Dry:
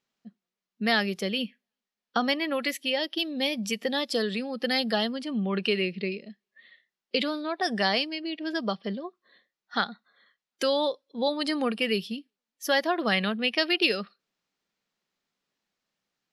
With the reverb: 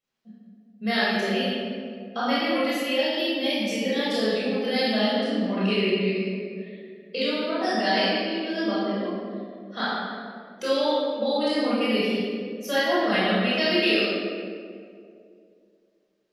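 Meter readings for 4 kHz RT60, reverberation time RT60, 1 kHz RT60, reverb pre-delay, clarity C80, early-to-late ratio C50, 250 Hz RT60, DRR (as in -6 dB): 1.2 s, 2.3 s, 1.9 s, 19 ms, -1.5 dB, -4.0 dB, 2.7 s, -10.5 dB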